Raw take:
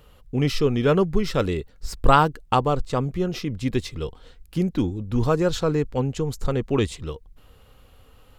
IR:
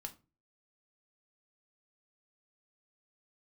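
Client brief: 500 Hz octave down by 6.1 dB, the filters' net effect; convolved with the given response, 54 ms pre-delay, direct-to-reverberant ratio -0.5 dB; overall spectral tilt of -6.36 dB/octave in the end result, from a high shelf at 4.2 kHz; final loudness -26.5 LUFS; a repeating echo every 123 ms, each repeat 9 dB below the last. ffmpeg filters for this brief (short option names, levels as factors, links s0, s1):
-filter_complex "[0:a]equalizer=f=500:t=o:g=-7.5,highshelf=f=4200:g=-8,aecho=1:1:123|246|369|492:0.355|0.124|0.0435|0.0152,asplit=2[s0][s1];[1:a]atrim=start_sample=2205,adelay=54[s2];[s1][s2]afir=irnorm=-1:irlink=0,volume=1.58[s3];[s0][s3]amix=inputs=2:normalize=0,volume=0.596"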